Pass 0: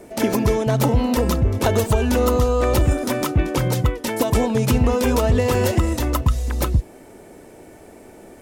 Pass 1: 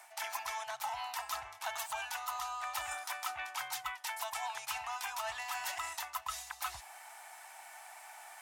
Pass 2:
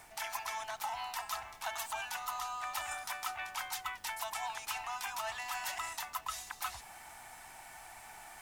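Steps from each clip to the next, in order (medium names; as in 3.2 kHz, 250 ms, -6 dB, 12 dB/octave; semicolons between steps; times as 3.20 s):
elliptic high-pass 770 Hz, stop band 40 dB; reverse; compression 10:1, threshold -37 dBFS, peak gain reduction 17 dB; reverse; trim +1 dB
added noise pink -64 dBFS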